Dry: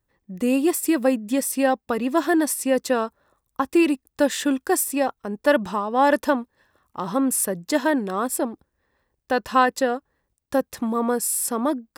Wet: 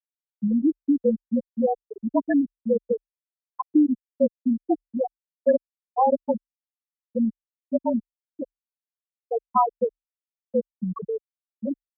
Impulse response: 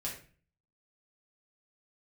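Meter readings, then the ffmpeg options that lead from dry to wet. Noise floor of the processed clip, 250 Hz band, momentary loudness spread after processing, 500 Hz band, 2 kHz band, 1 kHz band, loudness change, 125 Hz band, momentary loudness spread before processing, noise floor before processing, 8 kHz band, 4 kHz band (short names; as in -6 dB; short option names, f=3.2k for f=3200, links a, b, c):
under -85 dBFS, -2.0 dB, 10 LU, -3.0 dB, -18.5 dB, -4.0 dB, -3.0 dB, n/a, 7 LU, -78 dBFS, under -40 dB, under -40 dB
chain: -af "afftfilt=real='re*gte(hypot(re,im),0.794)':imag='im*gte(hypot(re,im),0.794)':win_size=1024:overlap=0.75,afreqshift=-37"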